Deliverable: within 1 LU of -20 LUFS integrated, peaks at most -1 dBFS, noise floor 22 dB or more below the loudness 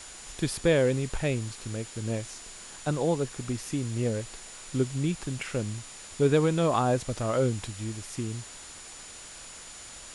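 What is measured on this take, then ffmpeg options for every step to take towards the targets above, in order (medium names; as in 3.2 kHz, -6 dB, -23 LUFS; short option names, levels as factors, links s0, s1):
steady tone 7 kHz; tone level -48 dBFS; noise floor -45 dBFS; noise floor target -51 dBFS; loudness -29.0 LUFS; peak level -12.0 dBFS; loudness target -20.0 LUFS
-> -af "bandreject=f=7000:w=30"
-af "afftdn=nr=6:nf=-45"
-af "volume=2.82"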